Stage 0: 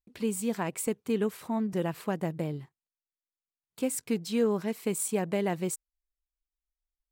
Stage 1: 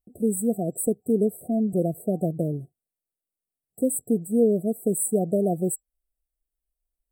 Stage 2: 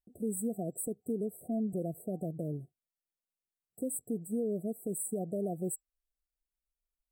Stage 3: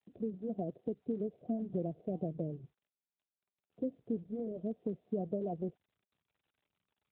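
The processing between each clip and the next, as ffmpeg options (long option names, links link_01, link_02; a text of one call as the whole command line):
ffmpeg -i in.wav -af "afftfilt=real='re*(1-between(b*sr/4096,750,7700))':imag='im*(1-between(b*sr/4096,750,7700))':win_size=4096:overlap=0.75,volume=6.5dB" out.wav
ffmpeg -i in.wav -af "alimiter=limit=-18dB:level=0:latency=1:release=110,volume=-8dB" out.wav
ffmpeg -i in.wav -af "volume=1dB" -ar 8000 -c:a libopencore_amrnb -b:a 12200 out.amr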